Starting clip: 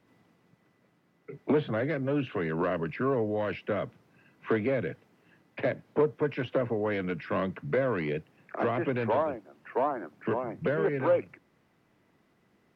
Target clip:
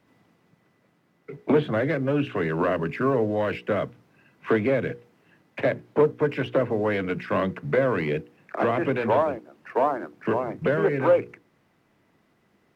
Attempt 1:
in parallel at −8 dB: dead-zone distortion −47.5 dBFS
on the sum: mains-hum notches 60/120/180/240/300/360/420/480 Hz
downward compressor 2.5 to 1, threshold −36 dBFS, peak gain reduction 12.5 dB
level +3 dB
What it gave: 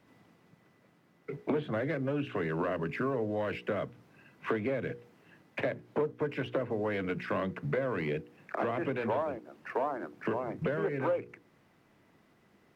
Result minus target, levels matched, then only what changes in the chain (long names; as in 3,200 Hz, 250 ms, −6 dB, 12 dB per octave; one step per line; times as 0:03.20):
downward compressor: peak gain reduction +12.5 dB
remove: downward compressor 2.5 to 1, threshold −36 dBFS, peak gain reduction 12.5 dB